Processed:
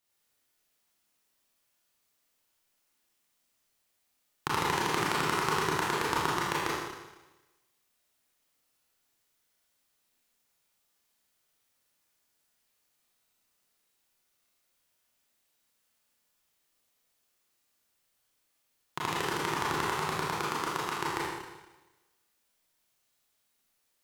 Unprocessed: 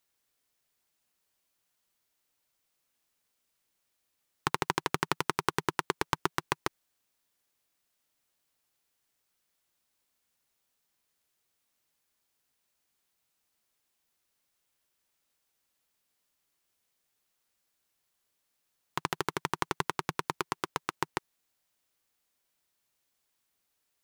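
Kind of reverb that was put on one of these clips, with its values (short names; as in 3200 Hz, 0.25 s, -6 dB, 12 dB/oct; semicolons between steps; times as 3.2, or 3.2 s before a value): Schroeder reverb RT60 1.1 s, combs from 26 ms, DRR -6.5 dB; gain -4 dB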